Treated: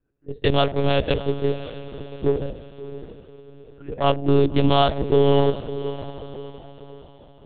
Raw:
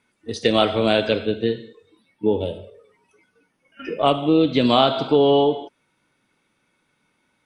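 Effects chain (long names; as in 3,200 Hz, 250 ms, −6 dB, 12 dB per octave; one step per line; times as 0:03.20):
adaptive Wiener filter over 41 samples
dynamic equaliser 230 Hz, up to +3 dB, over −30 dBFS, Q 0.97
feedback delay with all-pass diffusion 617 ms, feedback 42%, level −12.5 dB
one-pitch LPC vocoder at 8 kHz 140 Hz
level −1 dB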